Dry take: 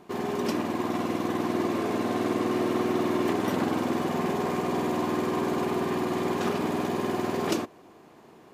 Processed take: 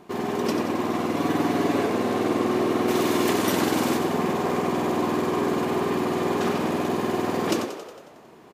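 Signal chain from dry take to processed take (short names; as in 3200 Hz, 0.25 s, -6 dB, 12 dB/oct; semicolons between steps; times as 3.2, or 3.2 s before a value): 1.16–1.86 comb 7.1 ms, depth 83%; 2.88–3.97 high shelf 3000 Hz +11.5 dB; frequency-shifting echo 91 ms, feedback 61%, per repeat +43 Hz, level -9 dB; gain +2.5 dB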